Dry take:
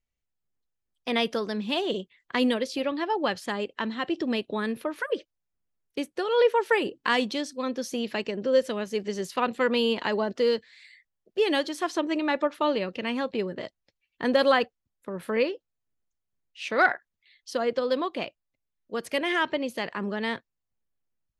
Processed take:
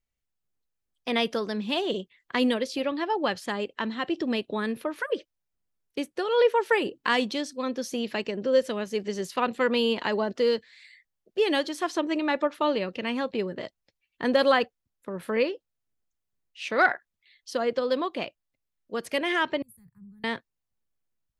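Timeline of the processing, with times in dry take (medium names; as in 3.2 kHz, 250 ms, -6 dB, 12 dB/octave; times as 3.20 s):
19.62–20.24 s: inverse Chebyshev band-stop 280–6100 Hz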